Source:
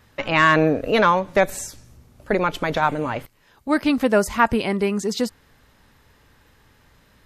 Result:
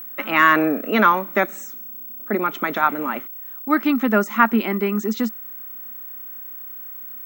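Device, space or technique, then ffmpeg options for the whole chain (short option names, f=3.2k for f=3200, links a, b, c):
old television with a line whistle: -filter_complex "[0:a]highpass=f=210:w=0.5412,highpass=f=210:w=1.3066,equalizer=f=220:t=q:w=4:g=10,equalizer=f=350:t=q:w=4:g=5,equalizer=f=510:t=q:w=4:g=-6,equalizer=f=1.3k:t=q:w=4:g=10,equalizer=f=2k:t=q:w=4:g=5,equalizer=f=4.7k:t=q:w=4:g=-10,lowpass=f=7.4k:w=0.5412,lowpass=f=7.4k:w=1.3066,aeval=exprs='val(0)+0.0316*sin(2*PI*15734*n/s)':c=same,asettb=1/sr,asplit=3[a][b][c];[a]atrim=end=1.474[d];[b]atrim=start=1.47:end=2.51,asetpts=PTS-STARTPTS,afade=t=in:d=0.004:c=qsin,afade=t=out:st=1.036:d=0.004:c=qsin,equalizer=f=2.3k:w=0.37:g=-4.5[e];[c]atrim=start=2.506[f];[d][e]acrossfade=d=0.004:c1=hsin:c2=qsin[g];[g][f]acrossfade=d=0.004:c1=qsin:c2=hsin,volume=-2.5dB"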